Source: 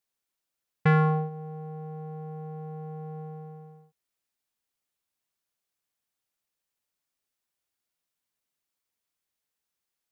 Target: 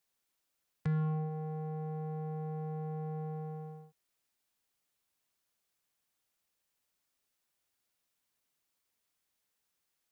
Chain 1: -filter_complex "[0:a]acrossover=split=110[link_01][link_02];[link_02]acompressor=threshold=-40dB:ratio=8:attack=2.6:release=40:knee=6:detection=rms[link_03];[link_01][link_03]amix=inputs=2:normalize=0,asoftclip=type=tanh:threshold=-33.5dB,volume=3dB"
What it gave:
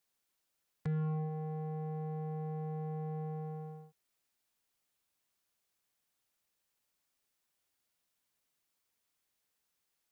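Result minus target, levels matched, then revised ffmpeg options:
soft clipping: distortion +9 dB
-filter_complex "[0:a]acrossover=split=110[link_01][link_02];[link_02]acompressor=threshold=-40dB:ratio=8:attack=2.6:release=40:knee=6:detection=rms[link_03];[link_01][link_03]amix=inputs=2:normalize=0,asoftclip=type=tanh:threshold=-27.5dB,volume=3dB"

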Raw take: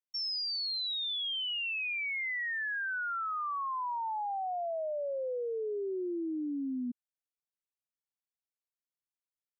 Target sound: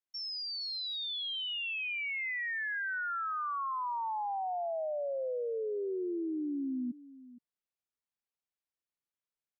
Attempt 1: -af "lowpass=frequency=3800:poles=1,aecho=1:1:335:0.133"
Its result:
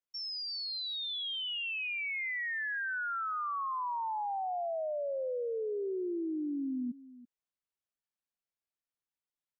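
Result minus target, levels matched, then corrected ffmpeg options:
echo 132 ms early
-af "lowpass=frequency=3800:poles=1,aecho=1:1:467:0.133"

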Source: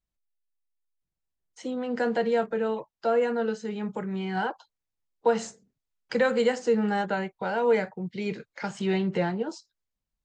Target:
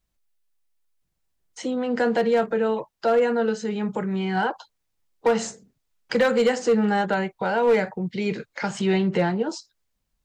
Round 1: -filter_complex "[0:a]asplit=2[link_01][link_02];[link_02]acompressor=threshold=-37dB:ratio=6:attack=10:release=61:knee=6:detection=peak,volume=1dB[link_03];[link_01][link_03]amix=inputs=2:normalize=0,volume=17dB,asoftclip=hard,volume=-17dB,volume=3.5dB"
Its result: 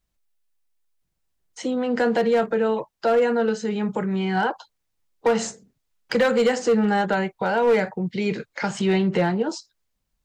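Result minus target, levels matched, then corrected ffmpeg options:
downward compressor: peak gain reduction −6 dB
-filter_complex "[0:a]asplit=2[link_01][link_02];[link_02]acompressor=threshold=-44.5dB:ratio=6:attack=10:release=61:knee=6:detection=peak,volume=1dB[link_03];[link_01][link_03]amix=inputs=2:normalize=0,volume=17dB,asoftclip=hard,volume=-17dB,volume=3.5dB"

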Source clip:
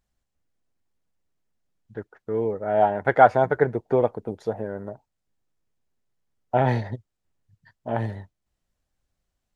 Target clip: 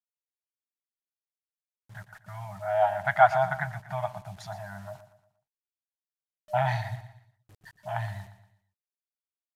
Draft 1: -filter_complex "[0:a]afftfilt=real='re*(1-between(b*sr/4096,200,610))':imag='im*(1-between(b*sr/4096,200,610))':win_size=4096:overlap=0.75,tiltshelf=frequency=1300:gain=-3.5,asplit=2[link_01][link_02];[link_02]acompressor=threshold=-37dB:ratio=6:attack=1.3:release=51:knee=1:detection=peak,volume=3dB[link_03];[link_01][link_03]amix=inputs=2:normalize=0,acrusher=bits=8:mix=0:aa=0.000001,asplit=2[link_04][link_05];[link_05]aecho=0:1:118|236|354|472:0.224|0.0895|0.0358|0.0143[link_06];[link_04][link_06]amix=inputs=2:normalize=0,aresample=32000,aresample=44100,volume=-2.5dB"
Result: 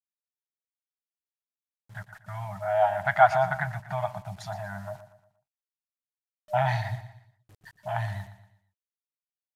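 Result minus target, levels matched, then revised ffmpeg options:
downward compressor: peak gain reduction −9.5 dB
-filter_complex "[0:a]afftfilt=real='re*(1-between(b*sr/4096,200,610))':imag='im*(1-between(b*sr/4096,200,610))':win_size=4096:overlap=0.75,tiltshelf=frequency=1300:gain=-3.5,asplit=2[link_01][link_02];[link_02]acompressor=threshold=-48.5dB:ratio=6:attack=1.3:release=51:knee=1:detection=peak,volume=3dB[link_03];[link_01][link_03]amix=inputs=2:normalize=0,acrusher=bits=8:mix=0:aa=0.000001,asplit=2[link_04][link_05];[link_05]aecho=0:1:118|236|354|472:0.224|0.0895|0.0358|0.0143[link_06];[link_04][link_06]amix=inputs=2:normalize=0,aresample=32000,aresample=44100,volume=-2.5dB"

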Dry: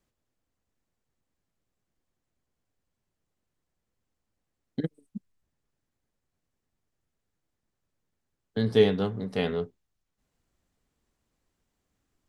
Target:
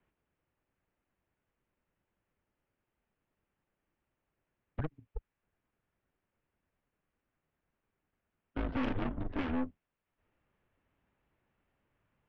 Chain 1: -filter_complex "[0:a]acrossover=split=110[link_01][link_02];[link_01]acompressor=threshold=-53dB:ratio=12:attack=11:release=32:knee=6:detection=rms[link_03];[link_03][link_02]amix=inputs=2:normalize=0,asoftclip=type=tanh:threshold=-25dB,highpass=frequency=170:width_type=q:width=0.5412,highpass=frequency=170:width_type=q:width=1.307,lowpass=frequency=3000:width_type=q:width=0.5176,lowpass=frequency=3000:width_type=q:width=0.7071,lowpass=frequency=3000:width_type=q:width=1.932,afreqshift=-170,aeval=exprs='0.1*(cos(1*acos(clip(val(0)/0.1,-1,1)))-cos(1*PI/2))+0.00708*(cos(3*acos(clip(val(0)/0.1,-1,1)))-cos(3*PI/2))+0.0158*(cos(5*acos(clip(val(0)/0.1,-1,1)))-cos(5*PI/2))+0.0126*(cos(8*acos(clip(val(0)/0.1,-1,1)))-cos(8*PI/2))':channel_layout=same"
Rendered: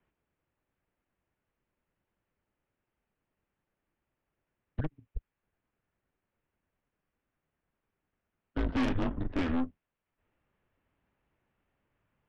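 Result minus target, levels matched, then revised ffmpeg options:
soft clipping: distortion −4 dB
-filter_complex "[0:a]acrossover=split=110[link_01][link_02];[link_01]acompressor=threshold=-53dB:ratio=12:attack=11:release=32:knee=6:detection=rms[link_03];[link_03][link_02]amix=inputs=2:normalize=0,asoftclip=type=tanh:threshold=-34.5dB,highpass=frequency=170:width_type=q:width=0.5412,highpass=frequency=170:width_type=q:width=1.307,lowpass=frequency=3000:width_type=q:width=0.5176,lowpass=frequency=3000:width_type=q:width=0.7071,lowpass=frequency=3000:width_type=q:width=1.932,afreqshift=-170,aeval=exprs='0.1*(cos(1*acos(clip(val(0)/0.1,-1,1)))-cos(1*PI/2))+0.00708*(cos(3*acos(clip(val(0)/0.1,-1,1)))-cos(3*PI/2))+0.0158*(cos(5*acos(clip(val(0)/0.1,-1,1)))-cos(5*PI/2))+0.0126*(cos(8*acos(clip(val(0)/0.1,-1,1)))-cos(8*PI/2))':channel_layout=same"

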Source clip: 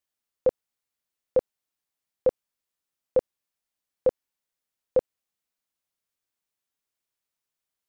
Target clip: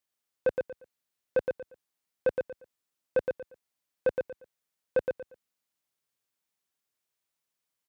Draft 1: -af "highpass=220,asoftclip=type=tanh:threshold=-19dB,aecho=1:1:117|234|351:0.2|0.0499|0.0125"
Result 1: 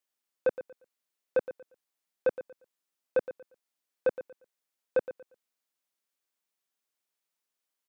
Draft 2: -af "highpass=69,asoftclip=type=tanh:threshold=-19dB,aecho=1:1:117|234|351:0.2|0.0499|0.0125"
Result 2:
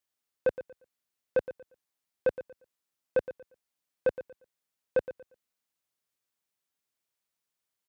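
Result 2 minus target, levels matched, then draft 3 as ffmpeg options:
echo-to-direct −9 dB
-af "highpass=69,asoftclip=type=tanh:threshold=-19dB,aecho=1:1:117|234|351:0.562|0.141|0.0351"

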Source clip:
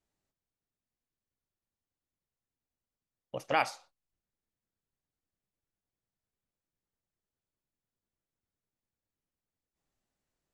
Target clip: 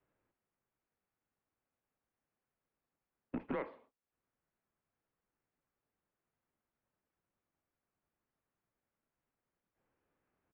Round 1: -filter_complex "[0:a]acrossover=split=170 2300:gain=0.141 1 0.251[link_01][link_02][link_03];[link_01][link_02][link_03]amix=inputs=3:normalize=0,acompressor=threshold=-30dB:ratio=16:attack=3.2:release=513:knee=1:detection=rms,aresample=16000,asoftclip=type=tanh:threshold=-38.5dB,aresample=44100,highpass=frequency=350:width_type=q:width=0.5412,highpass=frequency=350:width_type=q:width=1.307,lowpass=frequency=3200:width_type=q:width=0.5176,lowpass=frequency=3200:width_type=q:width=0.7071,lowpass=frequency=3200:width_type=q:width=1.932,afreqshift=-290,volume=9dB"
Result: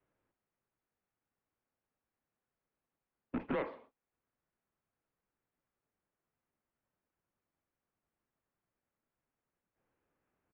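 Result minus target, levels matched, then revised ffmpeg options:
downward compressor: peak gain reduction −6.5 dB
-filter_complex "[0:a]acrossover=split=170 2300:gain=0.141 1 0.251[link_01][link_02][link_03];[link_01][link_02][link_03]amix=inputs=3:normalize=0,acompressor=threshold=-37dB:ratio=16:attack=3.2:release=513:knee=1:detection=rms,aresample=16000,asoftclip=type=tanh:threshold=-38.5dB,aresample=44100,highpass=frequency=350:width_type=q:width=0.5412,highpass=frequency=350:width_type=q:width=1.307,lowpass=frequency=3200:width_type=q:width=0.5176,lowpass=frequency=3200:width_type=q:width=0.7071,lowpass=frequency=3200:width_type=q:width=1.932,afreqshift=-290,volume=9dB"

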